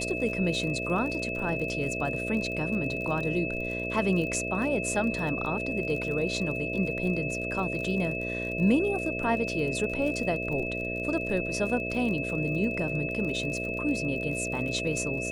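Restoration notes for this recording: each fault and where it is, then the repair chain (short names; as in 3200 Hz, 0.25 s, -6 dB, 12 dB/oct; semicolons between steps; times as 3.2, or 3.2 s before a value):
buzz 60 Hz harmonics 11 -35 dBFS
crackle 42/s -35 dBFS
tone 2600 Hz -33 dBFS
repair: de-click; de-hum 60 Hz, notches 11; notch 2600 Hz, Q 30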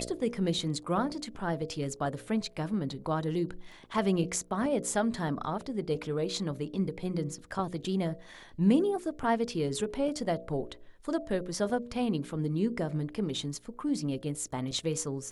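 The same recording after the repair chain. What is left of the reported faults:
none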